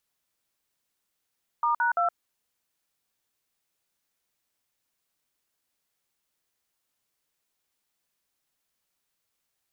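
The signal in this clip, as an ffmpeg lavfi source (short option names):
-f lavfi -i "aevalsrc='0.0631*clip(min(mod(t,0.17),0.118-mod(t,0.17))/0.002,0,1)*(eq(floor(t/0.17),0)*(sin(2*PI*941*mod(t,0.17))+sin(2*PI*1209*mod(t,0.17)))+eq(floor(t/0.17),1)*(sin(2*PI*941*mod(t,0.17))+sin(2*PI*1477*mod(t,0.17)))+eq(floor(t/0.17),2)*(sin(2*PI*697*mod(t,0.17))+sin(2*PI*1336*mod(t,0.17))))':d=0.51:s=44100"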